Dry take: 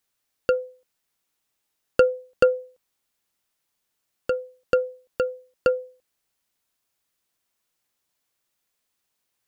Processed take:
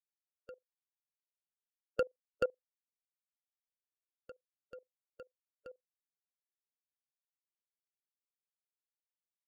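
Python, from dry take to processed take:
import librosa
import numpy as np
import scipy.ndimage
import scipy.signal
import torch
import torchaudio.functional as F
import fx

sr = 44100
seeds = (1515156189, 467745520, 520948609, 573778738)

y = fx.bin_expand(x, sr, power=3.0)
y = fx.level_steps(y, sr, step_db=20)
y = y * librosa.db_to_amplitude(-8.0)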